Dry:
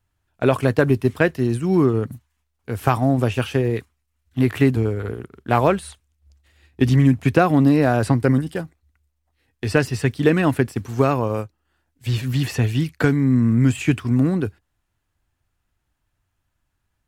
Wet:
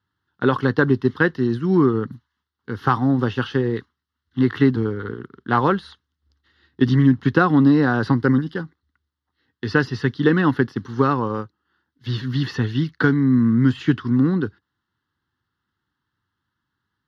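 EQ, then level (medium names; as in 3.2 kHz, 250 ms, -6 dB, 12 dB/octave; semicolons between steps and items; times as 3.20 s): dynamic bell 670 Hz, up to +7 dB, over -35 dBFS, Q 2.7; band-pass 170–4100 Hz; static phaser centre 2.4 kHz, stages 6; +4.0 dB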